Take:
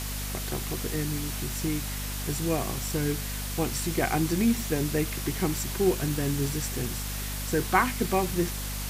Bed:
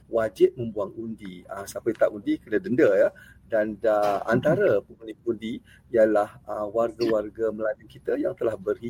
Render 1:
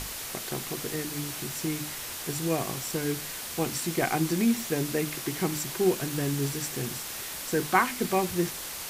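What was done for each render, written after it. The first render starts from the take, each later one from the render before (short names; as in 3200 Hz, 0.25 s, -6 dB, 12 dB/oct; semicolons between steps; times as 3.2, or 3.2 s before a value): notches 50/100/150/200/250/300 Hz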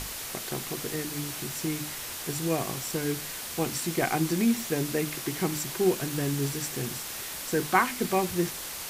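nothing audible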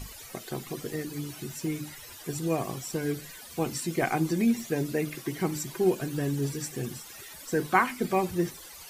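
denoiser 15 dB, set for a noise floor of -38 dBFS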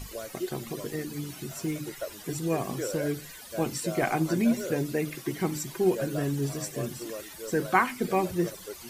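add bed -15 dB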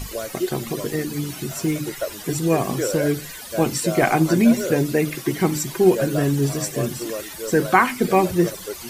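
gain +9 dB; limiter -2 dBFS, peak gain reduction 3 dB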